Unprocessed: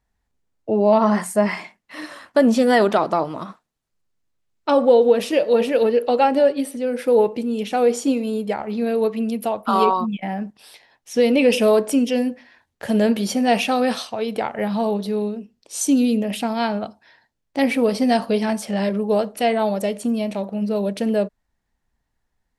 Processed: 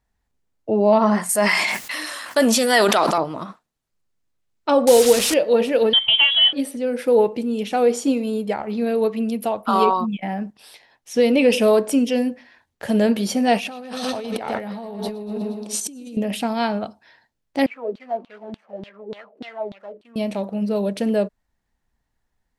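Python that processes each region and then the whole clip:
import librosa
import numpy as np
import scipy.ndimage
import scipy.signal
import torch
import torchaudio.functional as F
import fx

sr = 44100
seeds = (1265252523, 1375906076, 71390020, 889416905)

y = fx.chain(x, sr, fx.tilt_eq(slope=3.5),
    fx.hum_notches(base_hz=50, count=3),
    fx.sustainer(db_per_s=22.0), at=(1.29, 3.18))
y = fx.chain(y, sr, fx.delta_mod(bps=64000, step_db=-21.5),
    fx.high_shelf(hz=2800.0, db=11.0), at=(4.87, 5.34))
y = fx.chain(y, sr, fx.law_mismatch(coded='A'),
    fx.freq_invert(carrier_hz=3600),
    fx.band_squash(depth_pct=70), at=(5.93, 6.53))
y = fx.chain(y, sr, fx.echo_feedback(ms=119, feedback_pct=57, wet_db=-10),
    fx.over_compress(threshold_db=-30.0, ratio=-1.0), at=(13.57, 16.17))
y = fx.chain(y, sr, fx.median_filter(points=25),
    fx.filter_lfo_bandpass(shape='saw_down', hz=3.4, low_hz=250.0, high_hz=3700.0, q=5.0), at=(17.66, 20.16))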